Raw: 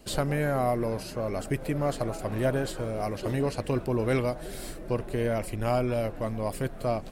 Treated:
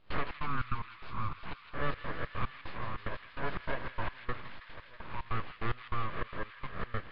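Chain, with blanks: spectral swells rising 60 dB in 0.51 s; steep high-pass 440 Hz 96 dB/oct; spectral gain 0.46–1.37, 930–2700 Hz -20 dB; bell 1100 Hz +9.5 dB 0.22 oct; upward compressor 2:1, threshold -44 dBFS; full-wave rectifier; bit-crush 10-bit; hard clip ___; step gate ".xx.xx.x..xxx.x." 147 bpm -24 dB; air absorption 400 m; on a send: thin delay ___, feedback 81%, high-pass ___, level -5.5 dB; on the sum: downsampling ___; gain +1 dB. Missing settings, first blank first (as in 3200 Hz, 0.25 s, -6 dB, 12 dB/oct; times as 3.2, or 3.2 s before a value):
-21.5 dBFS, 0.162 s, 2400 Hz, 11025 Hz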